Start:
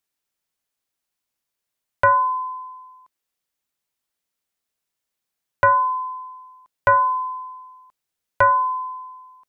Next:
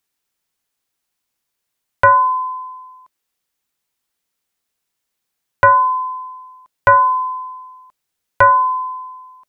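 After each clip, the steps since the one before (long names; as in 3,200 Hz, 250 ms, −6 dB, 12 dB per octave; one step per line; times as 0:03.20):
notch filter 610 Hz, Q 12
level +5.5 dB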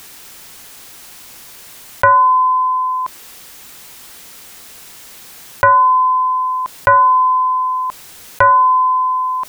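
envelope flattener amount 70%
level −1 dB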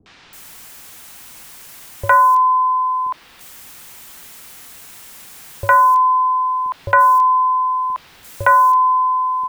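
three-band delay without the direct sound lows, mids, highs 60/330 ms, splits 440/4,600 Hz
level −1 dB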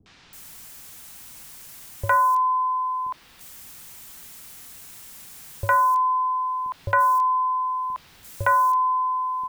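bass and treble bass +6 dB, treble +4 dB
level −7.5 dB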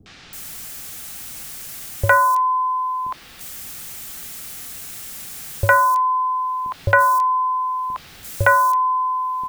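notch filter 980 Hz, Q 6.9
level +9 dB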